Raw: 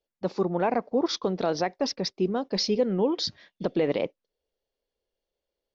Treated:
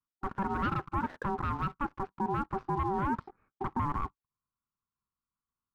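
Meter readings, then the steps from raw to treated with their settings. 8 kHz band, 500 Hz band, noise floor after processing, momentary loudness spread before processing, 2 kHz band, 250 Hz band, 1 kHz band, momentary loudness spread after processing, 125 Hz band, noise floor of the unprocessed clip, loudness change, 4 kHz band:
can't be measured, −14.5 dB, below −85 dBFS, 6 LU, −1.5 dB, −8.0 dB, +1.5 dB, 6 LU, −0.5 dB, below −85 dBFS, −6.5 dB, below −20 dB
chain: Chebyshev band-pass filter 190–1,200 Hz, order 3
parametric band 790 Hz +9.5 dB 0.41 octaves
leveller curve on the samples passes 2
brickwall limiter −19.5 dBFS, peak gain reduction 9 dB
ring modulation 580 Hz
level −3 dB

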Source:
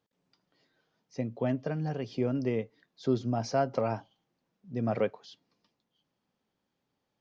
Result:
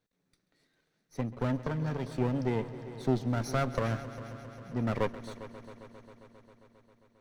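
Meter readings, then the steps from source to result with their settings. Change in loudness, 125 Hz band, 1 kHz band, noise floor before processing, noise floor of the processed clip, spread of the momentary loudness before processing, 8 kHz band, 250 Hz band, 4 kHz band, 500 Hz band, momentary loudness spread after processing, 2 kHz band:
−1.0 dB, +2.5 dB, −1.0 dB, −83 dBFS, −79 dBFS, 10 LU, can't be measured, −0.5 dB, 0.0 dB, −3.0 dB, 15 LU, +3.5 dB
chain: lower of the sound and its delayed copy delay 0.49 ms
echo machine with several playback heads 134 ms, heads all three, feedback 68%, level −19 dB

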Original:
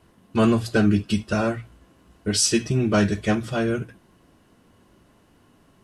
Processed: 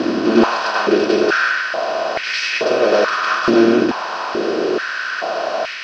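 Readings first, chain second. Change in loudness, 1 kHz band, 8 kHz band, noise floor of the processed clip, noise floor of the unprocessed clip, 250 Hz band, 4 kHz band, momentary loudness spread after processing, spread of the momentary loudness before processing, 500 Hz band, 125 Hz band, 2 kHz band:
+5.5 dB, +13.5 dB, −7.0 dB, −25 dBFS, −59 dBFS, +5.0 dB, +7.0 dB, 8 LU, 10 LU, +11.0 dB, −11.0 dB, +14.0 dB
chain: compressor on every frequency bin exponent 0.2
Butterworth low-pass 4,700 Hz 36 dB per octave
on a send: backwards echo 102 ms −4.5 dB
on the sum: mains hum 60 Hz, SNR 12 dB
high-pass on a step sequencer 2.3 Hz 290–2,100 Hz
level −3.5 dB

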